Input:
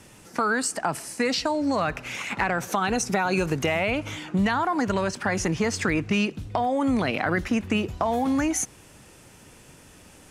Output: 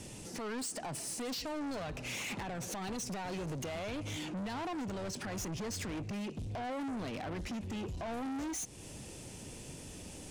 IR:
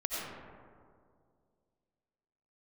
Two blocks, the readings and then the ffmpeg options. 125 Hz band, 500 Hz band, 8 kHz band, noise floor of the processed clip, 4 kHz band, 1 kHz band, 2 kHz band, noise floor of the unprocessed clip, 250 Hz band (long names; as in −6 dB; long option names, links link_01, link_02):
−10.5 dB, −14.5 dB, −9.5 dB, −49 dBFS, −10.5 dB, −16.0 dB, −17.5 dB, −51 dBFS, −13.5 dB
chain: -filter_complex "[0:a]lowpass=frequency=11000:width=0.5412,lowpass=frequency=11000:width=1.3066,equalizer=frequency=1400:width=1:gain=-11.5,asplit=2[link_01][link_02];[link_02]acompressor=threshold=-37dB:ratio=6,volume=-3dB[link_03];[link_01][link_03]amix=inputs=2:normalize=0,alimiter=limit=-21dB:level=0:latency=1:release=224,asoftclip=type=tanh:threshold=-36.5dB"